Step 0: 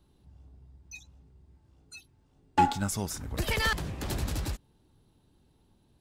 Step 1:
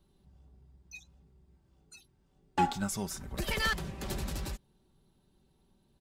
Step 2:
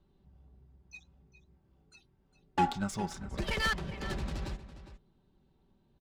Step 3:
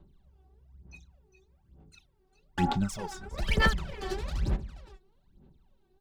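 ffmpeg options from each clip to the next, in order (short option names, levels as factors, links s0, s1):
-af "aecho=1:1:5.2:0.49,volume=0.631"
-af "aecho=1:1:407:0.224,adynamicsmooth=sensitivity=8:basefreq=3800"
-af "aphaser=in_gain=1:out_gain=1:delay=2.7:decay=0.8:speed=1.1:type=sinusoidal,volume=0.75"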